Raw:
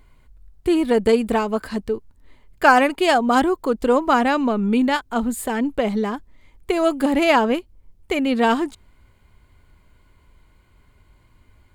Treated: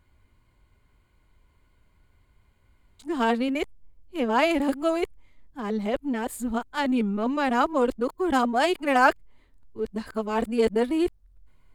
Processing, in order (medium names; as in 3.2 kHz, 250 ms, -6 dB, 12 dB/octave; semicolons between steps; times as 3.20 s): reverse the whole clip; in parallel at -10 dB: hysteresis with a dead band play -22.5 dBFS; on the sum: trim -8 dB